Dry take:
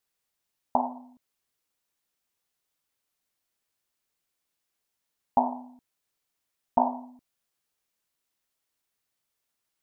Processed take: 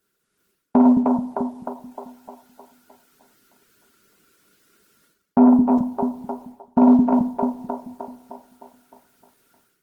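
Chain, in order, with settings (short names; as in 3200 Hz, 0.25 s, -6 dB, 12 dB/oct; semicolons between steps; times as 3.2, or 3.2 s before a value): split-band echo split 320 Hz, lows 0.218 s, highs 0.307 s, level -12 dB; reverse; compressor 10:1, threshold -35 dBFS, peak gain reduction 19.5 dB; reverse; reverb removal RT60 0.51 s; reverb RT60 0.80 s, pre-delay 5 ms, DRR 11 dB; dynamic EQ 770 Hz, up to -3 dB, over -50 dBFS, Q 1.7; small resonant body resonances 220/1400 Hz, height 16 dB, ringing for 25 ms; AGC gain up to 13 dB; thirty-one-band EQ 250 Hz -4 dB, 400 Hz +10 dB, 800 Hz -9 dB; gain +7.5 dB; Opus 20 kbps 48000 Hz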